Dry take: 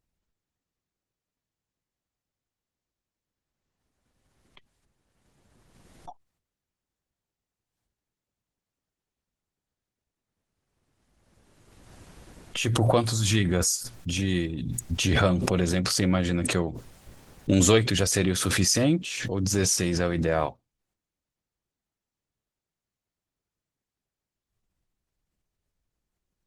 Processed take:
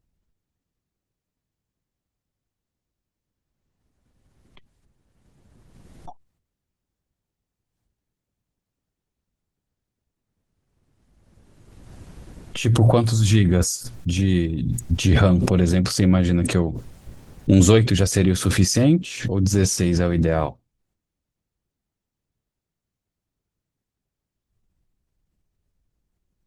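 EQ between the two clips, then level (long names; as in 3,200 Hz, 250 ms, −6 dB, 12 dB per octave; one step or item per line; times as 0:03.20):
low-shelf EQ 370 Hz +9.5 dB
0.0 dB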